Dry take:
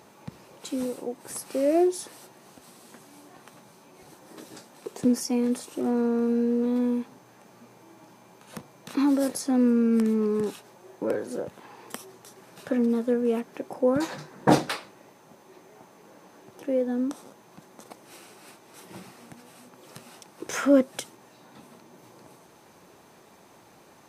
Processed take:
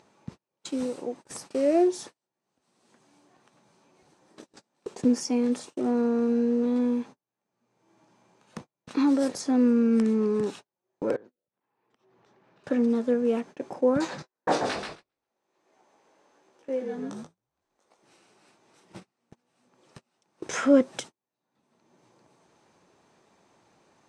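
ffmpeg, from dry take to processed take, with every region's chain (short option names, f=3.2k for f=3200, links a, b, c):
-filter_complex "[0:a]asettb=1/sr,asplit=3[a][b][c];[a]atrim=end=11.164[d];[b]atrim=start=11.16:end=12.64,asetpts=PTS-STARTPTS,afade=t=in:d=0.004:c=qsin,afade=t=out:st=1.476:d=0.004:c=qsin,lowpass=2.9k,acompressor=threshold=-48dB:ratio=6:attack=3.2:release=140:knee=1:detection=peak[e];[c]atrim=start=12.636[f];[d][e]acrossfade=d=0.004:c1=hsin:c2=qsin[g];[g][f]acrossfade=d=0.004:c1=qsin:c2=hsin,asettb=1/sr,asplit=3[h][i][j];[h]atrim=end=14.224[k];[i]atrim=start=14.22:end=18.03,asetpts=PTS-STARTPTS,afade=t=in:d=0.004:c=qsin,afade=t=out:st=3.806:d=0.004:c=qsin,highpass=370,flanger=delay=15.5:depth=6.2:speed=1.3,asplit=6[l][m][n][o][p][q];[m]adelay=133,afreqshift=-46,volume=-5dB[r];[n]adelay=266,afreqshift=-92,volume=-13.2dB[s];[o]adelay=399,afreqshift=-138,volume=-21.4dB[t];[p]adelay=532,afreqshift=-184,volume=-29.5dB[u];[q]adelay=665,afreqshift=-230,volume=-37.7dB[v];[l][r][s][t][u][v]amix=inputs=6:normalize=0,atrim=end_sample=168021[w];[j]atrim=start=18.026[x];[k][w]acrossfade=d=0.004:c1=hsin:c2=qsin[y];[y][x]acrossfade=d=0.004:c1=qsin:c2=hsin,agate=range=-42dB:threshold=-40dB:ratio=16:detection=peak,lowpass=f=8.3k:w=0.5412,lowpass=f=8.3k:w=1.3066,acompressor=mode=upward:threshold=-37dB:ratio=2.5"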